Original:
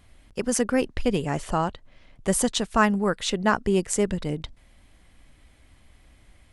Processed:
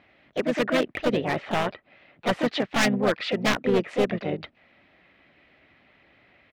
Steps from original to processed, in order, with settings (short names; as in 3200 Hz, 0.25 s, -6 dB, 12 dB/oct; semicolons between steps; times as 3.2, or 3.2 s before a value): speaker cabinet 190–3200 Hz, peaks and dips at 600 Hz +6 dB, 900 Hz -4 dB, 1900 Hz +8 dB; wavefolder -16.5 dBFS; harmoniser -7 st -12 dB, +3 st -10 dB, +4 st -6 dB